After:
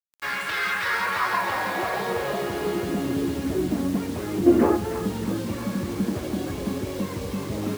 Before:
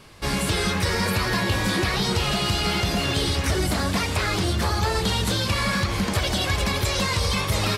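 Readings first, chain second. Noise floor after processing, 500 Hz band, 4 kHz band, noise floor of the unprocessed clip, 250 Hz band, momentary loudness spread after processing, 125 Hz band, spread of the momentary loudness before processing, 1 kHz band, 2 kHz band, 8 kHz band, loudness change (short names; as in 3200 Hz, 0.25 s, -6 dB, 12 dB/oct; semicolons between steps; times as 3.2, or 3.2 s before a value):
-33 dBFS, +1.5 dB, -13.0 dB, -27 dBFS, +2.5 dB, 8 LU, -8.5 dB, 1 LU, -1.0 dB, -2.0 dB, -10.5 dB, -2.5 dB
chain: band-pass sweep 1600 Hz -> 280 Hz, 0.74–3.11; spectral gain 4.46–4.77, 230–3100 Hz +12 dB; requantised 8-bit, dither none; on a send: thin delay 0.315 s, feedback 64%, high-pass 1400 Hz, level -4.5 dB; on the sum: gain +6.5 dB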